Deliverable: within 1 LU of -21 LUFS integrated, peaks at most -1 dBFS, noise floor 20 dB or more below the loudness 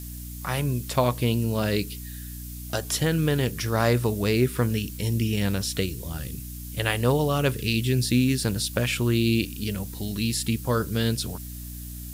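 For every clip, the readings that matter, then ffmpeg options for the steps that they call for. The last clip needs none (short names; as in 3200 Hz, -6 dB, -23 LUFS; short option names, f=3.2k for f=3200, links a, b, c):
hum 60 Hz; harmonics up to 300 Hz; hum level -36 dBFS; noise floor -37 dBFS; noise floor target -46 dBFS; loudness -25.5 LUFS; peak -7.5 dBFS; loudness target -21.0 LUFS
-> -af "bandreject=f=60:t=h:w=6,bandreject=f=120:t=h:w=6,bandreject=f=180:t=h:w=6,bandreject=f=240:t=h:w=6,bandreject=f=300:t=h:w=6"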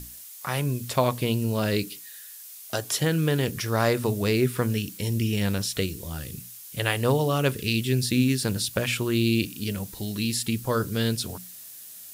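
hum none; noise floor -44 dBFS; noise floor target -46 dBFS
-> -af "afftdn=nr=6:nf=-44"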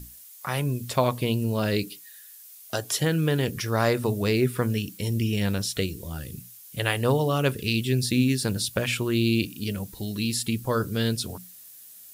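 noise floor -47 dBFS; loudness -26.0 LUFS; peak -8.0 dBFS; loudness target -21.0 LUFS
-> -af "volume=5dB"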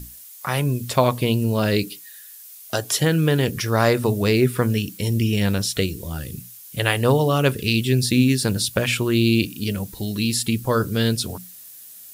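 loudness -21.0 LUFS; peak -3.0 dBFS; noise floor -42 dBFS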